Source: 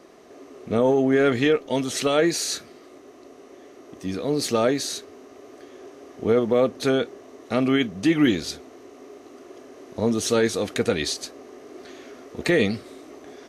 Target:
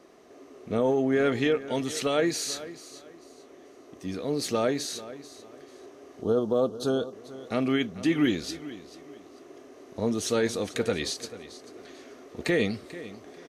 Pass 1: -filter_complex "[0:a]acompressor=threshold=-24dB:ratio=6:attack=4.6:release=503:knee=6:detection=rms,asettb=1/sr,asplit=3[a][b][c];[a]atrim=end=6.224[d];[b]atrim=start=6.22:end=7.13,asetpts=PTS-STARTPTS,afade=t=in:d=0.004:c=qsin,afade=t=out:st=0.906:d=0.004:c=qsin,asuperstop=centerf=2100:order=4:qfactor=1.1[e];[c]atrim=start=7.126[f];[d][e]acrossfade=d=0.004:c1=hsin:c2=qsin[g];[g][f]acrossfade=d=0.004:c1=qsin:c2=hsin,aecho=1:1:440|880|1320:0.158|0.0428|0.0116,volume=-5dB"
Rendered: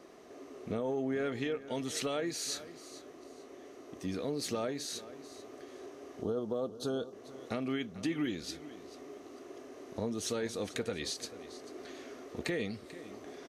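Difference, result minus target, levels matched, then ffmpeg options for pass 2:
compressor: peak gain reduction +11.5 dB
-filter_complex "[0:a]asettb=1/sr,asplit=3[a][b][c];[a]atrim=end=6.224[d];[b]atrim=start=6.22:end=7.13,asetpts=PTS-STARTPTS,afade=t=in:d=0.004:c=qsin,afade=t=out:st=0.906:d=0.004:c=qsin,asuperstop=centerf=2100:order=4:qfactor=1.1[e];[c]atrim=start=7.126[f];[d][e]acrossfade=d=0.004:c1=hsin:c2=qsin[g];[g][f]acrossfade=d=0.004:c1=qsin:c2=hsin,aecho=1:1:440|880|1320:0.158|0.0428|0.0116,volume=-5dB"

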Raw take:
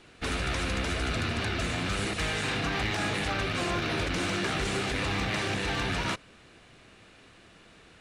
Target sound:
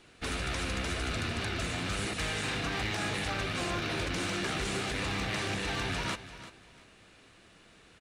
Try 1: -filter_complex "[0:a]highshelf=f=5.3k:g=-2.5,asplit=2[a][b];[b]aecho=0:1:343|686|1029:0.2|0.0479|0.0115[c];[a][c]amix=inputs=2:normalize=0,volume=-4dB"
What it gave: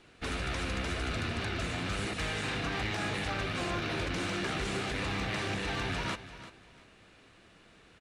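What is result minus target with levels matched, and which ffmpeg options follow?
8000 Hz band -3.5 dB
-filter_complex "[0:a]highshelf=f=5.3k:g=4.5,asplit=2[a][b];[b]aecho=0:1:343|686|1029:0.2|0.0479|0.0115[c];[a][c]amix=inputs=2:normalize=0,volume=-4dB"

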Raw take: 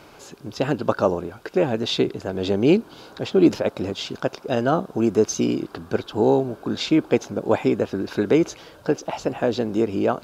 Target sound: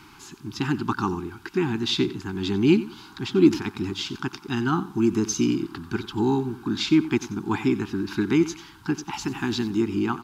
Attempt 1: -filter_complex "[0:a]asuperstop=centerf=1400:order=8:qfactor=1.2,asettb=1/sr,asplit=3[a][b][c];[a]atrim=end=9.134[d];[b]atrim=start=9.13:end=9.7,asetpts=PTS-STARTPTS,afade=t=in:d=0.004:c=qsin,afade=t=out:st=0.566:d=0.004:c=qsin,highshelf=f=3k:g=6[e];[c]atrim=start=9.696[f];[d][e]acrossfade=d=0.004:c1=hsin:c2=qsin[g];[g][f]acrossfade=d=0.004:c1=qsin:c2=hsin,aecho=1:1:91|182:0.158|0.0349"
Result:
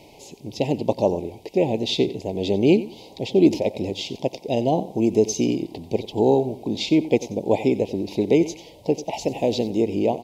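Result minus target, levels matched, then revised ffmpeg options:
500 Hz band +5.5 dB
-filter_complex "[0:a]asuperstop=centerf=560:order=8:qfactor=1.2,asettb=1/sr,asplit=3[a][b][c];[a]atrim=end=9.134[d];[b]atrim=start=9.13:end=9.7,asetpts=PTS-STARTPTS,afade=t=in:d=0.004:c=qsin,afade=t=out:st=0.566:d=0.004:c=qsin,highshelf=f=3k:g=6[e];[c]atrim=start=9.696[f];[d][e]acrossfade=d=0.004:c1=hsin:c2=qsin[g];[g][f]acrossfade=d=0.004:c1=qsin:c2=hsin,aecho=1:1:91|182:0.158|0.0349"

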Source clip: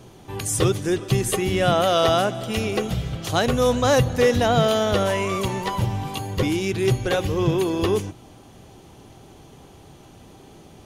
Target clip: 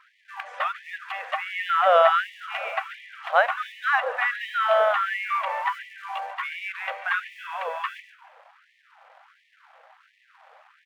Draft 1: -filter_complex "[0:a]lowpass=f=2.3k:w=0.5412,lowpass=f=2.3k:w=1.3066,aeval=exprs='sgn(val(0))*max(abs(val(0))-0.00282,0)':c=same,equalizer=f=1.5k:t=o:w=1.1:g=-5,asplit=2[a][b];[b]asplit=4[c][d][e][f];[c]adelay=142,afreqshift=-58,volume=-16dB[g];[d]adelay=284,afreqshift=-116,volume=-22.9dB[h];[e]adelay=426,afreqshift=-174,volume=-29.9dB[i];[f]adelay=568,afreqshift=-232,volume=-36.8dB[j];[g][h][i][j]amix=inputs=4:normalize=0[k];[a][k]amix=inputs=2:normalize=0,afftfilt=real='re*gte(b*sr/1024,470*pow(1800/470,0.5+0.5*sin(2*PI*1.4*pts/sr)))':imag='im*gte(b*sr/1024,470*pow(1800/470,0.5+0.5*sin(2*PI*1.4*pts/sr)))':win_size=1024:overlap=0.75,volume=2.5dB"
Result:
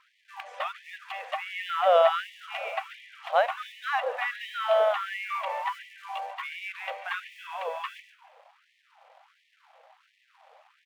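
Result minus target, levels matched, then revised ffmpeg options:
2000 Hz band -3.5 dB
-filter_complex "[0:a]lowpass=f=2.3k:w=0.5412,lowpass=f=2.3k:w=1.3066,aeval=exprs='sgn(val(0))*max(abs(val(0))-0.00282,0)':c=same,equalizer=f=1.5k:t=o:w=1.1:g=4.5,asplit=2[a][b];[b]asplit=4[c][d][e][f];[c]adelay=142,afreqshift=-58,volume=-16dB[g];[d]adelay=284,afreqshift=-116,volume=-22.9dB[h];[e]adelay=426,afreqshift=-174,volume=-29.9dB[i];[f]adelay=568,afreqshift=-232,volume=-36.8dB[j];[g][h][i][j]amix=inputs=4:normalize=0[k];[a][k]amix=inputs=2:normalize=0,afftfilt=real='re*gte(b*sr/1024,470*pow(1800/470,0.5+0.5*sin(2*PI*1.4*pts/sr)))':imag='im*gte(b*sr/1024,470*pow(1800/470,0.5+0.5*sin(2*PI*1.4*pts/sr)))':win_size=1024:overlap=0.75,volume=2.5dB"

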